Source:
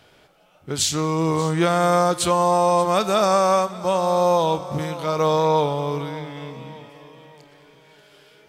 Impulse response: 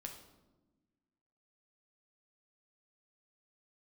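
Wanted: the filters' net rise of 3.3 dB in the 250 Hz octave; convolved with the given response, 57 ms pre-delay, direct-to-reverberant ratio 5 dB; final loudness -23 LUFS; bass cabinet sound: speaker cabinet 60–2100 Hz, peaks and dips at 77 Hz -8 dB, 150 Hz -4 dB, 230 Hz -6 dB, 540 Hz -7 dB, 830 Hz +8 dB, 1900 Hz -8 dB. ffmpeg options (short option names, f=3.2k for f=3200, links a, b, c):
-filter_complex "[0:a]equalizer=f=250:t=o:g=9,asplit=2[a][b];[1:a]atrim=start_sample=2205,adelay=57[c];[b][c]afir=irnorm=-1:irlink=0,volume=-1.5dB[d];[a][d]amix=inputs=2:normalize=0,highpass=f=60:w=0.5412,highpass=f=60:w=1.3066,equalizer=f=77:t=q:w=4:g=-8,equalizer=f=150:t=q:w=4:g=-4,equalizer=f=230:t=q:w=4:g=-6,equalizer=f=540:t=q:w=4:g=-7,equalizer=f=830:t=q:w=4:g=8,equalizer=f=1.9k:t=q:w=4:g=-8,lowpass=f=2.1k:w=0.5412,lowpass=f=2.1k:w=1.3066,volume=-5.5dB"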